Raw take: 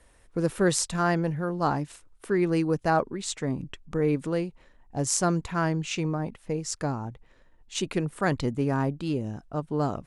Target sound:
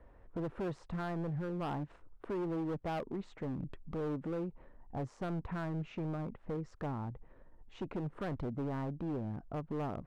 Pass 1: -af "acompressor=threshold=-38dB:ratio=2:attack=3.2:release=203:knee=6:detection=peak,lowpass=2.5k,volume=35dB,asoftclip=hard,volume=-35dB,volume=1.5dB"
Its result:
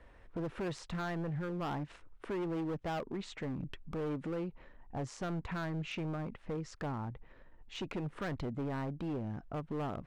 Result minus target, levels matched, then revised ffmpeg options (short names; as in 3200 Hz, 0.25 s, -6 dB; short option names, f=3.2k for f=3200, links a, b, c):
2000 Hz band +4.5 dB
-af "acompressor=threshold=-38dB:ratio=2:attack=3.2:release=203:knee=6:detection=peak,lowpass=1.1k,volume=35dB,asoftclip=hard,volume=-35dB,volume=1.5dB"